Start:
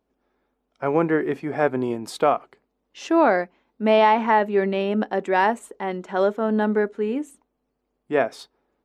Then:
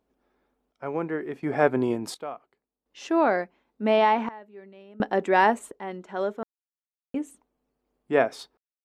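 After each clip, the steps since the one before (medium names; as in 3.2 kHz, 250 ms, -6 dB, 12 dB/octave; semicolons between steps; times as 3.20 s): random-step tremolo 1.4 Hz, depth 100%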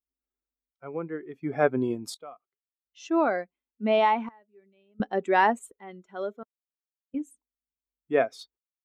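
expander on every frequency bin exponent 1.5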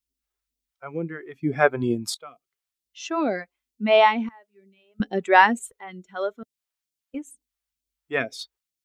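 phase shifter stages 2, 2.2 Hz, lowest notch 170–1200 Hz; trim +8 dB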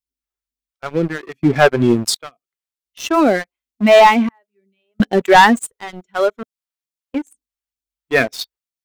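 waveshaping leveller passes 3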